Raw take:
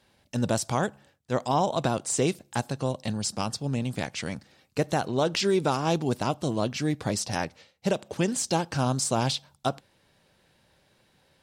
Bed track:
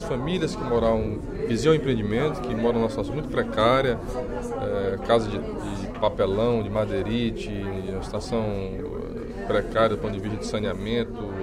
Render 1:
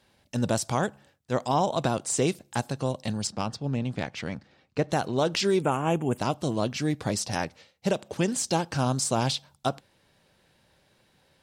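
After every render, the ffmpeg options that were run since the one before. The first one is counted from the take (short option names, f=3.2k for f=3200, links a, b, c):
-filter_complex "[0:a]asettb=1/sr,asplit=3[a][b][c];[a]atrim=end=3.274[d];[b]atrim=start=3.27:end=4.92,asetpts=PTS-STARTPTS,afade=t=in:d=0.004:c=qsin,afade=t=out:st=1.646:d=0.004:c=qsin,adynamicsmooth=sensitivity=1:basefreq=4.4k[e];[c]atrim=start=4.916[f];[d][e]acrossfade=d=0.004:c1=hsin:c2=qsin[g];[g][f]acrossfade=d=0.004:c1=qsin:c2=hsin,asettb=1/sr,asplit=3[h][i][j];[h]atrim=end=5.624[k];[i]atrim=start=5.62:end=6.18,asetpts=PTS-STARTPTS,afade=t=in:d=0.004:c=qsin,afade=t=out:st=0.556:d=0.004:c=qsin,asuperstop=centerf=4600:order=8:qfactor=1.3[l];[j]atrim=start=6.176[m];[k][l]acrossfade=d=0.004:c1=hsin:c2=qsin[n];[n][m]acrossfade=d=0.004:c1=qsin:c2=hsin"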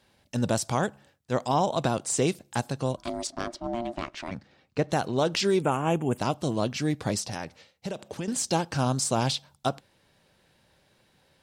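-filter_complex "[0:a]asplit=3[a][b][c];[a]afade=t=out:st=2.96:d=0.02[d];[b]aeval=exprs='val(0)*sin(2*PI*470*n/s)':c=same,afade=t=in:st=2.96:d=0.02,afade=t=out:st=4.3:d=0.02[e];[c]afade=t=in:st=4.3:d=0.02[f];[d][e][f]amix=inputs=3:normalize=0,asettb=1/sr,asplit=3[g][h][i];[g]atrim=end=7.204[j];[h]atrim=start=7.2:end=8.28,asetpts=PTS-STARTPTS,afade=t=in:d=0.004:c=qsin,afade=t=out:st=1.076:d=0.004:c=qsin,acompressor=threshold=-31dB:ratio=3:attack=3.2:release=140:knee=1:detection=peak[k];[i]atrim=start=8.276[l];[j][k]acrossfade=d=0.004:c1=hsin:c2=qsin[m];[m][l]acrossfade=d=0.004:c1=qsin:c2=hsin"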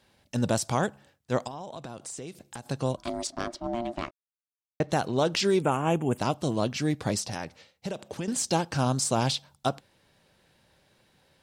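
-filter_complex "[0:a]asettb=1/sr,asplit=3[a][b][c];[a]atrim=end=1.474[d];[b]atrim=start=1.47:end=2.66,asetpts=PTS-STARTPTS,afade=t=in:d=0.004:c=qsin,afade=t=out:st=1.186:d=0.004:c=qsin,acompressor=threshold=-36dB:ratio=8:attack=3.2:release=140:knee=1:detection=peak[e];[c]atrim=start=2.656[f];[d][e]acrossfade=d=0.004:c1=hsin:c2=qsin[g];[g][f]acrossfade=d=0.004:c1=qsin:c2=hsin,asplit=3[h][i][j];[h]atrim=end=4.11,asetpts=PTS-STARTPTS,afade=t=out:st=4.106:d=0.004:c=hsin[k];[i]atrim=start=4.11:end=4.8,asetpts=PTS-STARTPTS,volume=0[l];[j]atrim=start=4.8,asetpts=PTS-STARTPTS,afade=t=in:d=0.004:c=hsin[m];[k][l][m]concat=n=3:v=0:a=1"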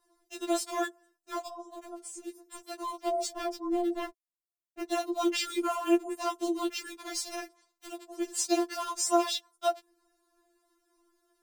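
-filter_complex "[0:a]acrossover=split=100|1500|5400[a][b][c][d];[c]acrusher=bits=6:mix=0:aa=0.000001[e];[a][b][e][d]amix=inputs=4:normalize=0,afftfilt=real='re*4*eq(mod(b,16),0)':imag='im*4*eq(mod(b,16),0)':win_size=2048:overlap=0.75"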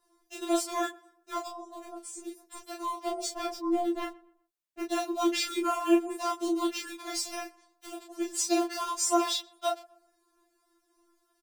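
-filter_complex "[0:a]asplit=2[a][b];[b]adelay=27,volume=-3.5dB[c];[a][c]amix=inputs=2:normalize=0,asplit=2[d][e];[e]adelay=124,lowpass=f=1.8k:p=1,volume=-21.5dB,asplit=2[f][g];[g]adelay=124,lowpass=f=1.8k:p=1,volume=0.41,asplit=2[h][i];[i]adelay=124,lowpass=f=1.8k:p=1,volume=0.41[j];[d][f][h][j]amix=inputs=4:normalize=0"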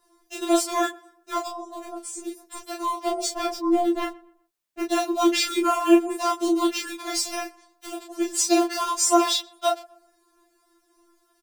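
-af "volume=7dB"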